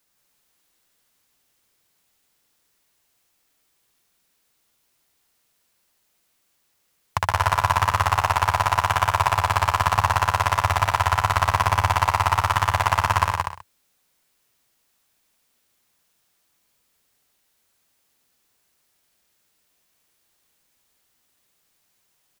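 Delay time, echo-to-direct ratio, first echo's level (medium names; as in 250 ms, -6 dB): 72 ms, -0.5 dB, -6.0 dB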